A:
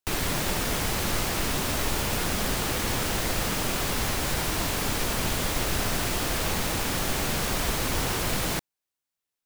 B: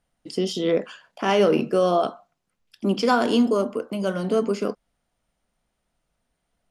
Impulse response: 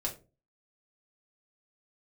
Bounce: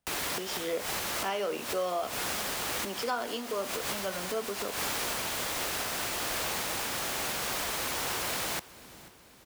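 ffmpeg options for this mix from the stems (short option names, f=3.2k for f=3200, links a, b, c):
-filter_complex "[0:a]acrossover=split=190|3000[a][b][c];[a]acompressor=threshold=-34dB:ratio=6[d];[d][b][c]amix=inputs=3:normalize=0,volume=-2dB,asplit=2[e][f];[f]volume=-21dB[g];[1:a]volume=-7dB,asplit=2[h][i];[i]apad=whole_len=416995[j];[e][j]sidechaincompress=threshold=-36dB:ratio=10:attack=16:release=138[k];[g]aecho=0:1:488|976|1464|1952|2440|2928|3416:1|0.5|0.25|0.125|0.0625|0.0312|0.0156[l];[k][h][l]amix=inputs=3:normalize=0,highpass=42,acrossover=split=480|3000[m][n][o];[m]acompressor=threshold=-43dB:ratio=5[p];[p][n][o]amix=inputs=3:normalize=0,alimiter=limit=-21.5dB:level=0:latency=1:release=447"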